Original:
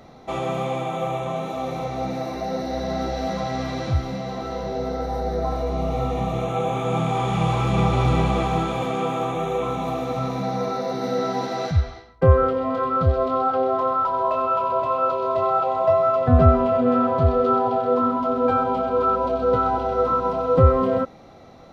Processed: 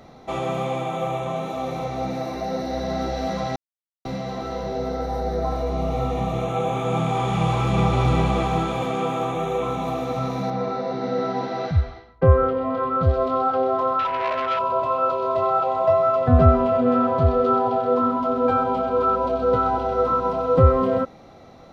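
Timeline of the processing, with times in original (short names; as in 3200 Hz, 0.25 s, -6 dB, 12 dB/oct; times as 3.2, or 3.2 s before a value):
3.56–4.05 mute
10.5–13.03 air absorption 160 m
13.99–14.59 core saturation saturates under 1400 Hz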